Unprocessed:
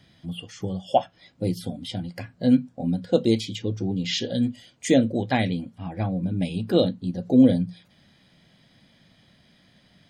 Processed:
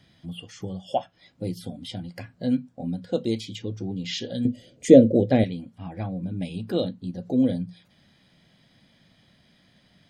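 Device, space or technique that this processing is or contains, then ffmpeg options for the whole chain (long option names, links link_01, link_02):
parallel compression: -filter_complex "[0:a]asettb=1/sr,asplit=3[link_01][link_02][link_03];[link_01]atrim=end=4.454[link_04];[link_02]atrim=start=4.45:end=5.44,asetpts=PTS-STARTPTS,afade=type=in:duration=0.004:curve=qsin,afade=type=out:start_time=0.986:duration=0.004:curve=qsin,lowshelf=frequency=700:width_type=q:width=3:gain=9.5[link_05];[link_03]atrim=start=5.436[link_06];[link_04][link_05]acrossfade=duration=0.004:curve1=hsin:curve2=qsin[link_07];[link_07][link_06]acrossfade=duration=0.004:curve1=qsin:curve2=hsin,asplit=2[link_08][link_09];[link_09]acompressor=threshold=-32dB:ratio=6,volume=-3dB[link_10];[link_08][link_10]amix=inputs=2:normalize=0,volume=-6.5dB"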